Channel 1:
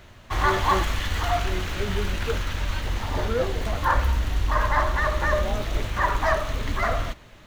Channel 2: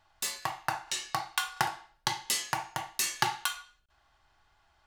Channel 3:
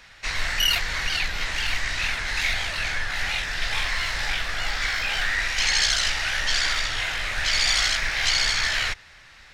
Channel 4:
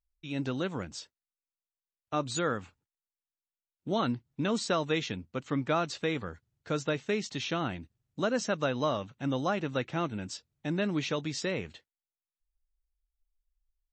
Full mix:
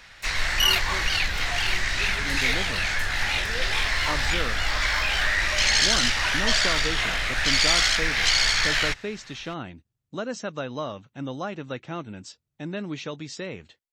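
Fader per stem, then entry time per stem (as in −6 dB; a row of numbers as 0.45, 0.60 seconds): −11.5, −13.5, +1.0, −2.0 decibels; 0.20, 0.00, 0.00, 1.95 seconds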